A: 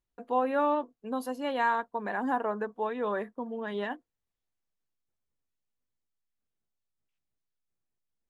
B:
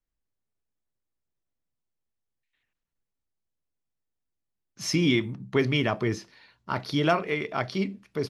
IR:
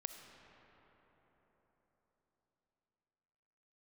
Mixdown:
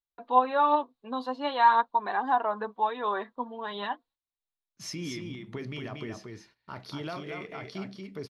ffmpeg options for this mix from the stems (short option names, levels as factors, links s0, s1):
-filter_complex "[0:a]equalizer=f=1000:w=1.5:g=12,flanger=delay=2.5:depth=5.6:regen=40:speed=0.45:shape=sinusoidal,lowpass=f=3900:t=q:w=6.2,volume=0.944[s0];[1:a]acompressor=threshold=0.0447:ratio=2,alimiter=limit=0.0944:level=0:latency=1:release=20,volume=0.422,asplit=2[s1][s2];[s2]volume=0.562,aecho=0:1:232:1[s3];[s0][s1][s3]amix=inputs=3:normalize=0,agate=range=0.2:threshold=0.00112:ratio=16:detection=peak"